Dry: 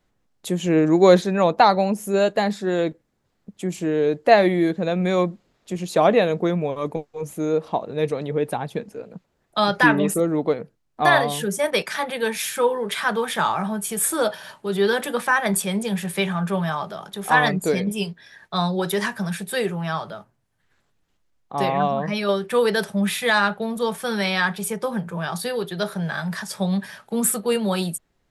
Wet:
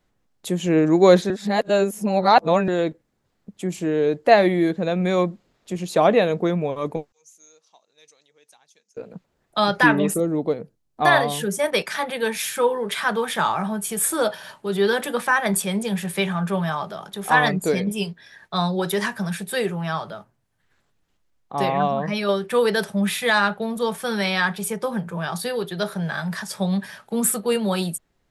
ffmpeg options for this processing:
-filter_complex "[0:a]asettb=1/sr,asplit=3[a][b][c];[a]atrim=end=7.124[d];[b]atrim=start=7.12:end=8.97,asetpts=PTS-STARTPTS,afade=t=in:d=0.004:c=qsin,afade=t=out:st=1.846:d=0.004:c=qsin,bandpass=f=6.2k:t=q:w=4.8[e];[c]atrim=start=8.966[f];[d][e]acrossfade=d=0.004:c1=hsin:c2=qsin[g];[g][f]acrossfade=d=0.004:c1=qsin:c2=hsin,asettb=1/sr,asplit=3[h][i][j];[h]atrim=end=10.174[k];[i]atrim=start=10.17:end=11.01,asetpts=PTS-STARTPTS,afade=t=in:d=0.004:c=qsin,afade=t=out:st=0.836:d=0.004:c=qsin,equalizer=f=1.7k:t=o:w=2.3:g=-7[l];[j]atrim=start=11.006[m];[k][l]acrossfade=d=0.004:c1=hsin:c2=qsin[n];[n][m]acrossfade=d=0.004:c1=qsin:c2=hsin,asplit=3[o][p][q];[o]atrim=end=1.302[r];[p]atrim=start=1.298:end=2.682,asetpts=PTS-STARTPTS,areverse[s];[q]atrim=start=2.678[t];[r][s]acrossfade=d=0.004:c1=hsin:c2=hsin[u];[u][t]acrossfade=d=0.004:c1=hsin:c2=hsin"

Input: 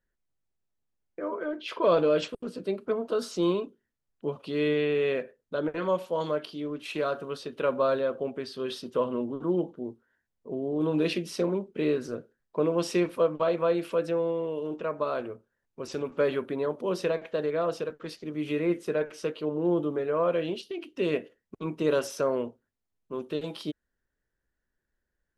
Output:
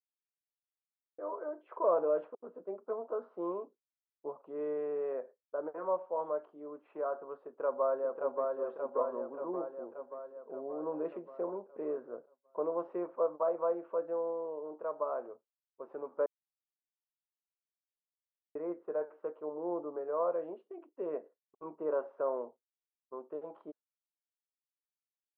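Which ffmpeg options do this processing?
-filter_complex "[0:a]asplit=2[a][b];[b]afade=t=in:st=7.44:d=0.01,afade=t=out:st=8.58:d=0.01,aecho=0:1:580|1160|1740|2320|2900|3480|4060|4640|5220|5800:0.707946|0.460165|0.299107|0.19442|0.126373|0.0821423|0.0533925|0.0347051|0.0225583|0.0146629[c];[a][c]amix=inputs=2:normalize=0,asplit=3[d][e][f];[d]atrim=end=16.26,asetpts=PTS-STARTPTS,afade=t=out:st=16.256:d=0.004:c=hsin[g];[e]atrim=start=16.26:end=18.55,asetpts=PTS-STARTPTS,volume=0[h];[f]atrim=start=18.55,asetpts=PTS-STARTPTS,afade=t=in:d=0.004:c=hsin[i];[g][h][i]concat=n=3:v=0:a=1,highpass=700,agate=range=-33dB:threshold=-47dB:ratio=3:detection=peak,lowpass=f=1k:w=0.5412,lowpass=f=1k:w=1.3066"

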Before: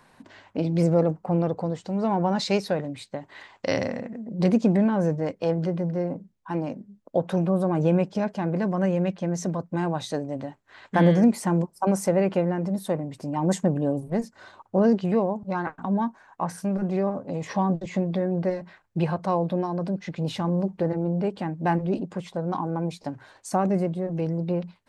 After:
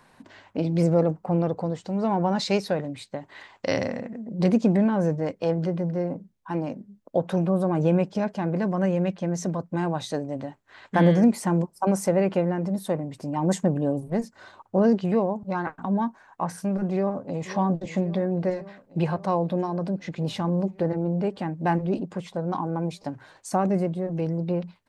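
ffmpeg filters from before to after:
-filter_complex "[0:a]asplit=2[a][b];[b]afade=t=in:st=16.91:d=0.01,afade=t=out:st=17.46:d=0.01,aecho=0:1:540|1080|1620|2160|2700|3240|3780|4320|4860|5400|5940:0.188365|0.141274|0.105955|0.0794664|0.0595998|0.0446999|0.0335249|0.0251437|0.0188578|0.0141433|0.0106075[c];[a][c]amix=inputs=2:normalize=0"

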